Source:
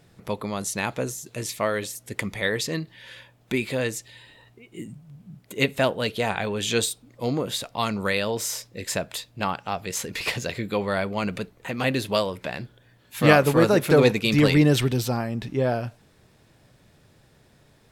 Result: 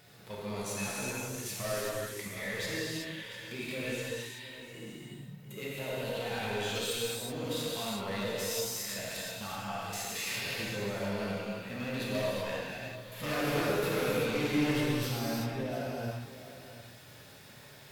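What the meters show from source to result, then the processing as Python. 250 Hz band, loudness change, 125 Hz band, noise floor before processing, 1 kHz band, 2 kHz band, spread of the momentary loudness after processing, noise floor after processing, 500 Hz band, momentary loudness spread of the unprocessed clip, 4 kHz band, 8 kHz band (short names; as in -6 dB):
-10.5 dB, -10.0 dB, -11.5 dB, -59 dBFS, -10.5 dB, -9.0 dB, 16 LU, -52 dBFS, -10.5 dB, 16 LU, -7.0 dB, -6.5 dB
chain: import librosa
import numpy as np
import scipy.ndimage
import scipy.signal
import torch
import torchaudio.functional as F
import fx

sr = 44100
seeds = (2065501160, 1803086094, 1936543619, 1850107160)

y = fx.tilt_eq(x, sr, slope=2.5)
y = fx.hpss(y, sr, part='percussive', gain_db=-13)
y = fx.peak_eq(y, sr, hz=8400.0, db=-7.0, octaves=1.2)
y = fx.level_steps(y, sr, step_db=13)
y = np.clip(y, -10.0 ** (-28.5 / 20.0), 10.0 ** (-28.5 / 20.0))
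y = fx.power_curve(y, sr, exponent=0.7)
y = y + 10.0 ** (-14.0 / 20.0) * np.pad(y, (int(702 * sr / 1000.0), 0))[:len(y)]
y = fx.rev_gated(y, sr, seeds[0], gate_ms=410, shape='flat', drr_db=-7.0)
y = y * 10.0 ** (-5.5 / 20.0)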